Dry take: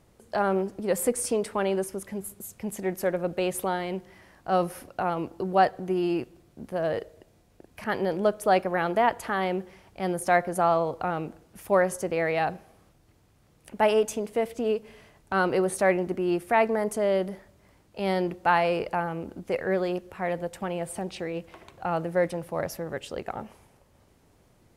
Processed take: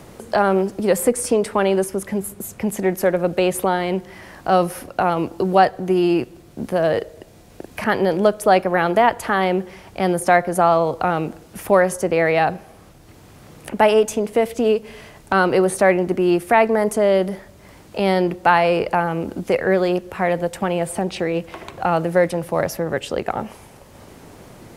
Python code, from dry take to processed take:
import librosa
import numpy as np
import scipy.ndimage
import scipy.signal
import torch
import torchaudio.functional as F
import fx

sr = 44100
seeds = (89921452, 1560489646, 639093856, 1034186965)

y = fx.band_squash(x, sr, depth_pct=40)
y = F.gain(torch.from_numpy(y), 8.5).numpy()